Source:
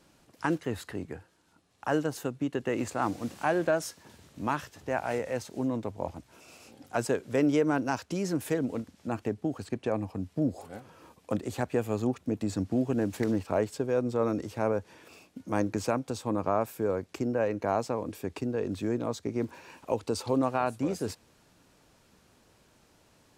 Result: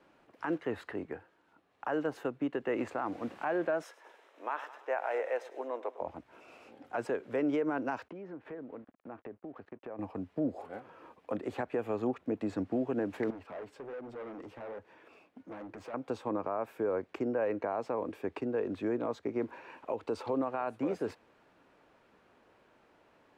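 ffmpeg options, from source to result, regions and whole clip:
-filter_complex "[0:a]asettb=1/sr,asplit=3[s0][s1][s2];[s0]atrim=end=3.834[s3];[s1]atrim=start=3.83:end=6.01,asetpts=PTS-STARTPTS,afade=t=in:d=0.004:c=qsin,afade=t=out:st=2.176:d=0.004:c=qsin,highpass=f=430:w=0.5412,highpass=f=430:w=1.3066,bandreject=f=4500:w=9.3,aecho=1:1:105|210|315|420:0.126|0.0592|0.0278|0.0131,atrim=end_sample=96138[s4];[s2]atrim=start=6.006[s5];[s3][s4]acrossfade=d=0.004:c1=hsin:c2=qsin[s6];[s6][s5]acrossfade=d=0.004:c1=qsin:c2=hsin,asettb=1/sr,asplit=3[s7][s8][s9];[s7]atrim=end=8.084[s10];[s8]atrim=start=8.08:end=9.99,asetpts=PTS-STARTPTS,afade=t=in:d=0.004:c=qsin,afade=t=out:st=1.906:d=0.004:c=qsin,lowpass=2000,aeval=exprs='sgn(val(0))*max(abs(val(0))-0.0015,0)':c=same,acompressor=threshold=0.00891:ratio=4:attack=3.2:release=140:knee=1:detection=peak[s11];[s9]atrim=start=9.986[s12];[s10][s11]acrossfade=d=0.004:c1=hsin:c2=qsin[s13];[s13][s12]acrossfade=d=0.004:c1=qsin:c2=hsin,asettb=1/sr,asplit=3[s14][s15][s16];[s14]atrim=end=13.304[s17];[s15]atrim=start=13.3:end=15.94,asetpts=PTS-STARTPTS,afade=t=in:d=0.004:c=qsin,afade=t=out:st=2.636:d=0.004:c=qsin,acompressor=threshold=0.0355:ratio=5:attack=3.2:release=140:knee=1:detection=peak,flanger=delay=0.8:depth=8.2:regen=-63:speed=1.2:shape=triangular,asoftclip=type=hard:threshold=0.0106[s18];[s16]atrim=start=15.936[s19];[s17][s18]acrossfade=d=0.004:c1=hsin:c2=qsin[s20];[s20][s19]acrossfade=d=0.004:c1=qsin:c2=hsin,acrossover=split=270 2800:gain=0.224 1 0.0891[s21][s22][s23];[s21][s22][s23]amix=inputs=3:normalize=0,alimiter=level_in=1.06:limit=0.0631:level=0:latency=1:release=90,volume=0.944,volume=1.19"

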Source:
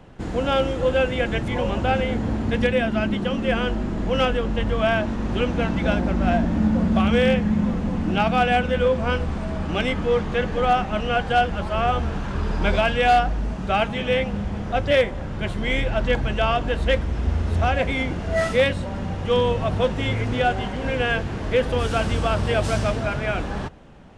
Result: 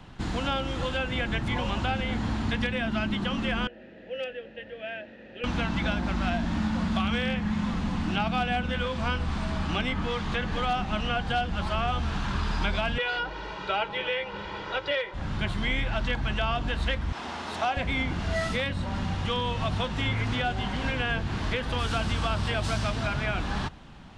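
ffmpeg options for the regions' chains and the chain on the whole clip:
-filter_complex "[0:a]asettb=1/sr,asplit=3[s0][s1][s2];[s0]atrim=end=3.674[s3];[s1]atrim=start=3.67:end=5.44,asetpts=PTS-STARTPTS,afade=t=in:d=0.004:c=qsin,afade=t=out:st=1.766:d=0.004:c=qsin,asplit=3[s4][s5][s6];[s4]bandpass=f=530:t=q:w=8,volume=1[s7];[s5]bandpass=f=1840:t=q:w=8,volume=0.501[s8];[s6]bandpass=f=2480:t=q:w=8,volume=0.355[s9];[s7][s8][s9]amix=inputs=3:normalize=0,highshelf=f=4500:g=-8.5,asoftclip=type=hard:threshold=0.141[s10];[s2]atrim=start=5.436[s11];[s3][s10]acrossfade=d=0.004:c1=hsin:c2=qsin[s12];[s12][s11]acrossfade=d=0.004:c1=qsin:c2=hsin,asettb=1/sr,asplit=3[s13][s14][s15];[s13]atrim=end=12.984[s16];[s14]atrim=start=12.98:end=15.14,asetpts=PTS-STARTPTS,afade=t=in:d=0.004:c=qsin,afade=t=out:st=2.156:d=0.004:c=qsin,acrossover=split=240 4900:gain=0.0631 1 0.0794[s17][s18][s19];[s17][s18][s19]amix=inputs=3:normalize=0,aecho=1:1:2.1:0.94,atrim=end_sample=95256[s20];[s15]atrim=start=15.136[s21];[s16][s20]acrossfade=d=0.004:c1=hsin:c2=qsin[s22];[s22][s21]acrossfade=d=0.004:c1=qsin:c2=hsin,asettb=1/sr,asplit=3[s23][s24][s25];[s23]atrim=end=17.124[s26];[s24]atrim=start=17.12:end=17.77,asetpts=PTS-STARTPTS,afade=t=in:d=0.004:c=qsin,afade=t=out:st=0.646:d=0.004:c=qsin,highpass=360,equalizer=f=860:w=1.6:g=5[s27];[s25]atrim=start=17.766[s28];[s26][s27]acrossfade=d=0.004:c1=hsin:c2=qsin[s29];[s29][s28]acrossfade=d=0.004:c1=qsin:c2=hsin,acrossover=split=720|2200[s30][s31][s32];[s30]acompressor=threshold=0.0562:ratio=4[s33];[s31]acompressor=threshold=0.0224:ratio=4[s34];[s32]acompressor=threshold=0.00891:ratio=4[s35];[s33][s34][s35]amix=inputs=3:normalize=0,equalizer=f=500:t=o:w=1:g=-9,equalizer=f=1000:t=o:w=1:g=3,equalizer=f=4000:t=o:w=1:g=7"

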